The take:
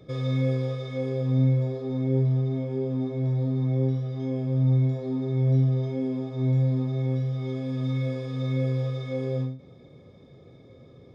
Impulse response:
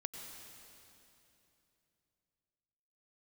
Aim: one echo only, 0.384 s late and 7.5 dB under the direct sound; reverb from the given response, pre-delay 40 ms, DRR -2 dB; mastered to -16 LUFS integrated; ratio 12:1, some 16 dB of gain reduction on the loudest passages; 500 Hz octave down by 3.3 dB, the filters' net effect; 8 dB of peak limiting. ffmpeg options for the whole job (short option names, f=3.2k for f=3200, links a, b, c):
-filter_complex "[0:a]equalizer=f=500:t=o:g=-4,acompressor=threshold=-35dB:ratio=12,alimiter=level_in=13dB:limit=-24dB:level=0:latency=1,volume=-13dB,aecho=1:1:384:0.422,asplit=2[a][b];[1:a]atrim=start_sample=2205,adelay=40[c];[b][c]afir=irnorm=-1:irlink=0,volume=3.5dB[d];[a][d]amix=inputs=2:normalize=0,volume=20.5dB"